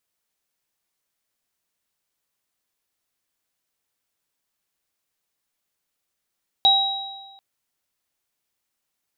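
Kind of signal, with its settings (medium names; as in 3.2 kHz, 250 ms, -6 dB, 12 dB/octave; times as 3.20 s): sine partials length 0.74 s, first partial 784 Hz, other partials 3.84 kHz, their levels 6 dB, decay 1.38 s, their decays 1.15 s, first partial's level -17.5 dB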